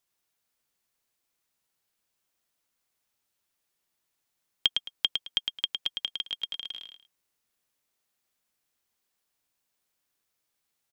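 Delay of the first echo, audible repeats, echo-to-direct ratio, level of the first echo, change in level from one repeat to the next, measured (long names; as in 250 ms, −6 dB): 108 ms, 2, −5.0 dB, −5.0 dB, −13.0 dB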